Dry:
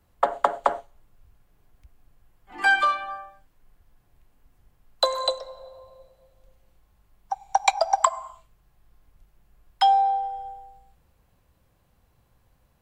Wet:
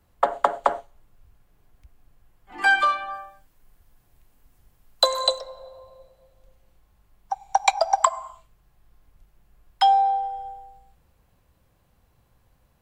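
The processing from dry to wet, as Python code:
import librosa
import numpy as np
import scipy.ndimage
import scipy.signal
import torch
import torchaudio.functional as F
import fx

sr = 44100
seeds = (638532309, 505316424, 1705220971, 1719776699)

y = fx.high_shelf(x, sr, hz=fx.line((3.13, 5500.0), (5.4, 3800.0)), db=7.5, at=(3.13, 5.4), fade=0.02)
y = y * librosa.db_to_amplitude(1.0)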